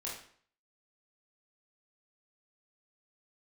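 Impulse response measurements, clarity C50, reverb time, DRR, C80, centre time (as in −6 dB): 3.5 dB, 0.55 s, −5.5 dB, 8.0 dB, 41 ms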